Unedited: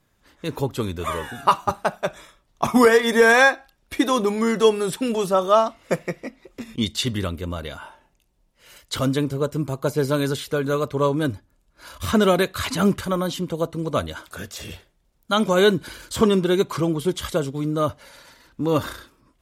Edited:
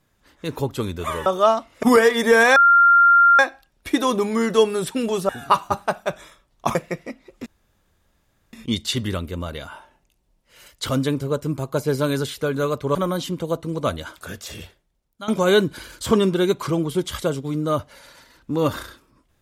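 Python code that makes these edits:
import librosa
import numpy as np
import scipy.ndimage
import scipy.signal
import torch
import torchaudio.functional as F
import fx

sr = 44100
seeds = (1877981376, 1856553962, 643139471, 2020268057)

y = fx.edit(x, sr, fx.swap(start_s=1.26, length_s=1.46, other_s=5.35, other_length_s=0.57),
    fx.insert_tone(at_s=3.45, length_s=0.83, hz=1390.0, db=-9.5),
    fx.insert_room_tone(at_s=6.63, length_s=1.07),
    fx.cut(start_s=11.05, length_s=2.0),
    fx.fade_out_to(start_s=14.6, length_s=0.78, floor_db=-16.0), tone=tone)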